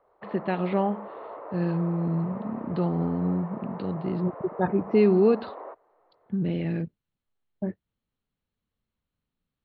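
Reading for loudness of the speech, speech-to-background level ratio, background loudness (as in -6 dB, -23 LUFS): -27.0 LUFS, 14.0 dB, -41.0 LUFS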